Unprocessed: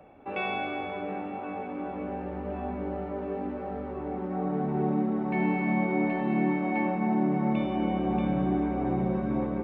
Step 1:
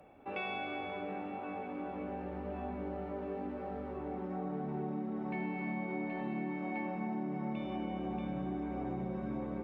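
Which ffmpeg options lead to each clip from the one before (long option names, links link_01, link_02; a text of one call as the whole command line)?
ffmpeg -i in.wav -af "aemphasis=mode=production:type=cd,acompressor=threshold=-30dB:ratio=4,volume=-5dB" out.wav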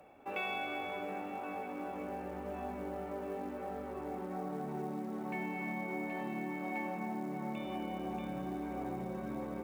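ffmpeg -i in.wav -af "lowshelf=frequency=300:gain=-7.5,acrusher=bits=7:mode=log:mix=0:aa=0.000001,volume=2dB" out.wav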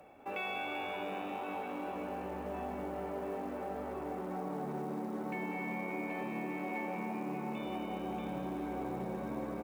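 ffmpeg -i in.wav -filter_complex "[0:a]asplit=2[link_01][link_02];[link_02]alimiter=level_in=10dB:limit=-24dB:level=0:latency=1,volume=-10dB,volume=2dB[link_03];[link_01][link_03]amix=inputs=2:normalize=0,asplit=9[link_04][link_05][link_06][link_07][link_08][link_09][link_10][link_11][link_12];[link_05]adelay=194,afreqshift=91,volume=-10.5dB[link_13];[link_06]adelay=388,afreqshift=182,volume=-14.4dB[link_14];[link_07]adelay=582,afreqshift=273,volume=-18.3dB[link_15];[link_08]adelay=776,afreqshift=364,volume=-22.1dB[link_16];[link_09]adelay=970,afreqshift=455,volume=-26dB[link_17];[link_10]adelay=1164,afreqshift=546,volume=-29.9dB[link_18];[link_11]adelay=1358,afreqshift=637,volume=-33.8dB[link_19];[link_12]adelay=1552,afreqshift=728,volume=-37.6dB[link_20];[link_04][link_13][link_14][link_15][link_16][link_17][link_18][link_19][link_20]amix=inputs=9:normalize=0,volume=-5.5dB" out.wav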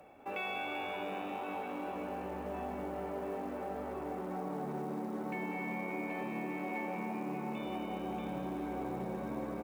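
ffmpeg -i in.wav -af anull out.wav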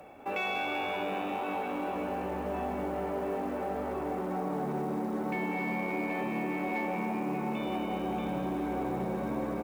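ffmpeg -i in.wav -af "asoftclip=type=tanh:threshold=-28.5dB,volume=6.5dB" out.wav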